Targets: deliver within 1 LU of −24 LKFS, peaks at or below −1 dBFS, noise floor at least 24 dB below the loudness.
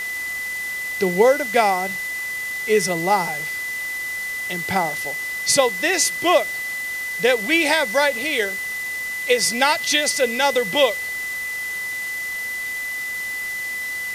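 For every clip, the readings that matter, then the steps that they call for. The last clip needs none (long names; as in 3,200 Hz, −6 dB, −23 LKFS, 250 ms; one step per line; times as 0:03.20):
interfering tone 2,000 Hz; level of the tone −25 dBFS; background noise floor −28 dBFS; target noise floor −45 dBFS; integrated loudness −20.5 LKFS; sample peak −2.0 dBFS; target loudness −24.0 LKFS
→ notch filter 2,000 Hz, Q 30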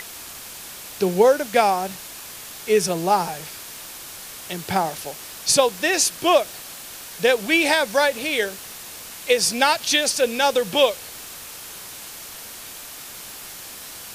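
interfering tone none found; background noise floor −38 dBFS; target noise floor −44 dBFS
→ broadband denoise 6 dB, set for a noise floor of −38 dBFS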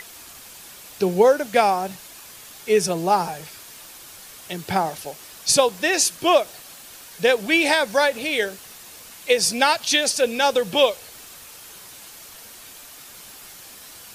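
background noise floor −43 dBFS; target noise floor −44 dBFS
→ broadband denoise 6 dB, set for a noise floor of −43 dBFS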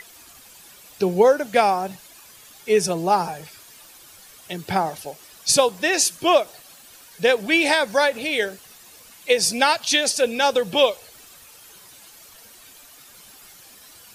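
background noise floor −47 dBFS; integrated loudness −20.0 LKFS; sample peak −3.0 dBFS; target loudness −24.0 LKFS
→ level −4 dB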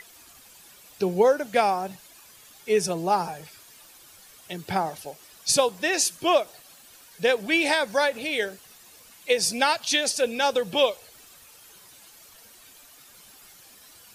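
integrated loudness −24.0 LKFS; sample peak −7.0 dBFS; background noise floor −51 dBFS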